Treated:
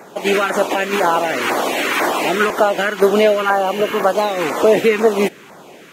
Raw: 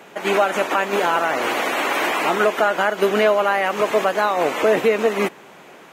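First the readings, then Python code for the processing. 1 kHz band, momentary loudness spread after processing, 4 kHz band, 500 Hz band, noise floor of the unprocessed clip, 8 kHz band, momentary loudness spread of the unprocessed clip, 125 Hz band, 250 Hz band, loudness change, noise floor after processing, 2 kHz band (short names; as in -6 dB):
+2.0 dB, 5 LU, +3.5 dB, +3.5 dB, -44 dBFS, +5.0 dB, 4 LU, n/a, +5.0 dB, +3.0 dB, -41 dBFS, +1.5 dB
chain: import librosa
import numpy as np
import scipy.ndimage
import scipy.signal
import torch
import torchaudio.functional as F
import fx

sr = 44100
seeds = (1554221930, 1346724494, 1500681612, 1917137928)

y = fx.spec_repair(x, sr, seeds[0], start_s=3.49, length_s=0.52, low_hz=1800.0, high_hz=11000.0, source='before')
y = fx.filter_lfo_notch(y, sr, shape='saw_down', hz=2.0, low_hz=530.0, high_hz=3300.0, q=0.91)
y = F.gain(torch.from_numpy(y), 5.5).numpy()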